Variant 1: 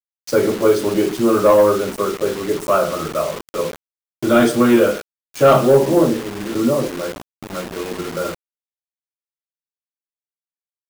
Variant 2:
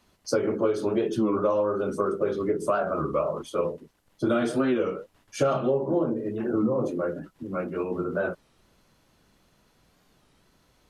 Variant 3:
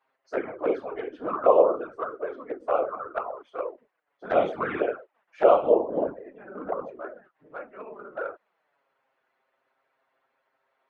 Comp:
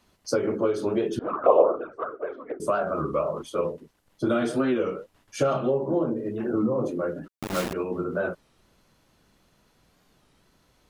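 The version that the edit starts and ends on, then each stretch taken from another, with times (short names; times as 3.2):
2
1.19–2.6 from 3
7.28–7.73 from 1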